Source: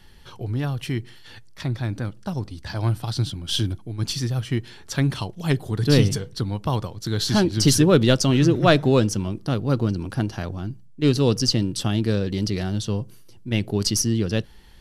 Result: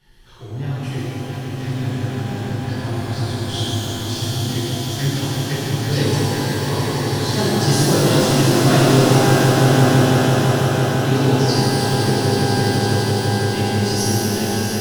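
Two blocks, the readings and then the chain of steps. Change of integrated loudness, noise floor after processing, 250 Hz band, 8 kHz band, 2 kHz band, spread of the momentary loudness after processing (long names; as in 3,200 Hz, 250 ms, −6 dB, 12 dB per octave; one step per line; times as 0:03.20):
+5.0 dB, −28 dBFS, +4.0 dB, +4.5 dB, +8.0 dB, 11 LU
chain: echo that builds up and dies away 167 ms, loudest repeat 5, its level −8 dB
reverb with rising layers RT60 2.3 s, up +12 semitones, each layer −8 dB, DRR −11.5 dB
level −11.5 dB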